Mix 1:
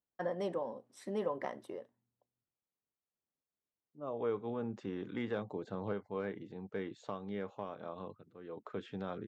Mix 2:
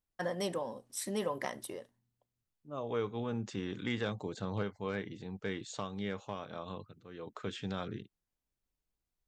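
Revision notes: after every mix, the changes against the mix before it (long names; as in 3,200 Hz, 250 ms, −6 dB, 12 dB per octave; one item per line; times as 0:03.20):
second voice: entry −1.30 s
master: remove resonant band-pass 490 Hz, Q 0.51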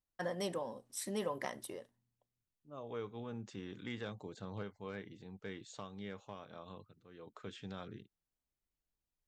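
first voice −3.0 dB
second voice −8.0 dB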